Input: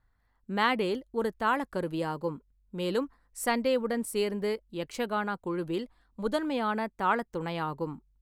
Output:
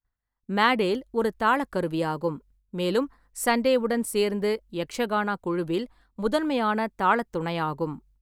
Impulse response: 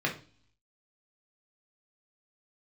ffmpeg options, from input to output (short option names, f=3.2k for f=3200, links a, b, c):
-af "agate=range=-33dB:threshold=-58dB:ratio=3:detection=peak,volume=5dB"